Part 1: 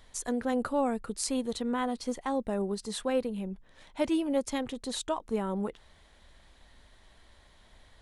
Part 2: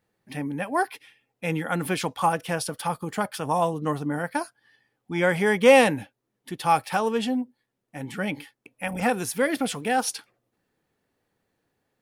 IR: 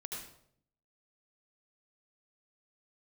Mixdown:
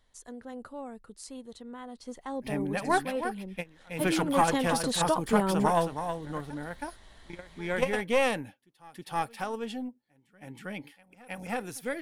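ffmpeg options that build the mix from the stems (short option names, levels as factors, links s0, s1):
-filter_complex "[0:a]bandreject=f=2400:w=14,acontrast=83,volume=0.75,afade=t=in:st=1.85:d=0.55:silence=0.398107,afade=t=in:st=4.05:d=0.68:silence=0.354813,asplit=2[s0][s1];[1:a]aeval=exprs='(tanh(2.51*val(0)+0.65)-tanh(0.65))/2.51':c=same,adelay=2150,volume=1.12,asplit=2[s2][s3];[s3]volume=0.398[s4];[s1]apad=whole_len=624892[s5];[s2][s5]sidechaingate=range=0.0355:threshold=0.00398:ratio=16:detection=peak[s6];[s4]aecho=0:1:320:1[s7];[s0][s6][s7]amix=inputs=3:normalize=0"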